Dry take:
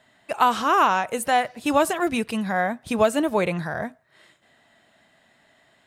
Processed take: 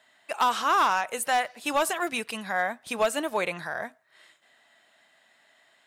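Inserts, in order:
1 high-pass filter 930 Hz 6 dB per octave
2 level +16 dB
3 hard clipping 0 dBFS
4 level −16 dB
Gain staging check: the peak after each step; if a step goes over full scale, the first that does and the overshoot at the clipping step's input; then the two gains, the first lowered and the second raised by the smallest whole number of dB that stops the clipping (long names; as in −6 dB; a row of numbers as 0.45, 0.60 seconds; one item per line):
−7.5, +8.5, 0.0, −16.0 dBFS
step 2, 8.5 dB
step 2 +7 dB, step 4 −7 dB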